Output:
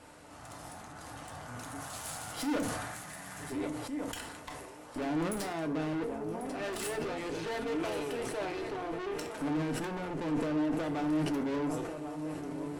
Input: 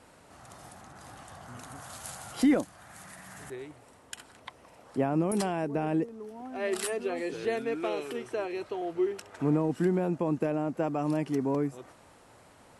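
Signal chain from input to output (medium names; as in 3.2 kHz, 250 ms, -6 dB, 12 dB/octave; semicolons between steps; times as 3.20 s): shuffle delay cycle 1457 ms, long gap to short 3:1, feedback 49%, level -17 dB; valve stage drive 38 dB, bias 0.55; FDN reverb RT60 0.39 s, low-frequency decay 0.95×, high-frequency decay 0.95×, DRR 4.5 dB; decay stretcher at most 32 dB/s; trim +3.5 dB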